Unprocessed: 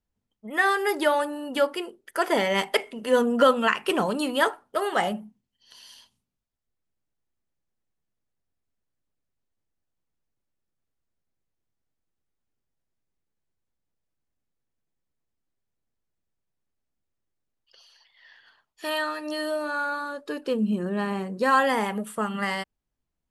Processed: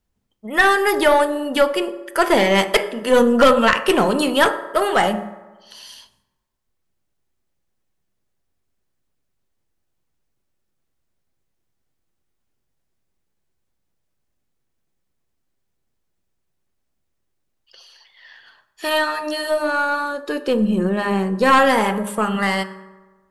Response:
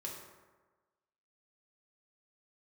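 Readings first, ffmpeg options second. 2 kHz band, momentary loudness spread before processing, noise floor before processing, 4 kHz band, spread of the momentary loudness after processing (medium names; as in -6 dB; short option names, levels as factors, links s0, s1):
+7.5 dB, 10 LU, -82 dBFS, +7.5 dB, 11 LU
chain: -filter_complex "[0:a]bandreject=f=102.1:t=h:w=4,bandreject=f=204.2:t=h:w=4,bandreject=f=306.3:t=h:w=4,bandreject=f=408.4:t=h:w=4,bandreject=f=510.5:t=h:w=4,bandreject=f=612.6:t=h:w=4,bandreject=f=714.7:t=h:w=4,bandreject=f=816.8:t=h:w=4,bandreject=f=918.9:t=h:w=4,bandreject=f=1021:t=h:w=4,bandreject=f=1123.1:t=h:w=4,bandreject=f=1225.2:t=h:w=4,bandreject=f=1327.3:t=h:w=4,bandreject=f=1429.4:t=h:w=4,bandreject=f=1531.5:t=h:w=4,bandreject=f=1633.6:t=h:w=4,bandreject=f=1735.7:t=h:w=4,bandreject=f=1837.8:t=h:w=4,bandreject=f=1939.9:t=h:w=4,asplit=2[s0][s1];[1:a]atrim=start_sample=2205[s2];[s1][s2]afir=irnorm=-1:irlink=0,volume=0.422[s3];[s0][s3]amix=inputs=2:normalize=0,aeval=exprs='0.562*(cos(1*acos(clip(val(0)/0.562,-1,1)))-cos(1*PI/2))+0.0891*(cos(4*acos(clip(val(0)/0.562,-1,1)))-cos(4*PI/2))+0.112*(cos(5*acos(clip(val(0)/0.562,-1,1)))-cos(5*PI/2))+0.0112*(cos(6*acos(clip(val(0)/0.562,-1,1)))-cos(6*PI/2))+0.0316*(cos(7*acos(clip(val(0)/0.562,-1,1)))-cos(7*PI/2))':c=same,volume=1.33"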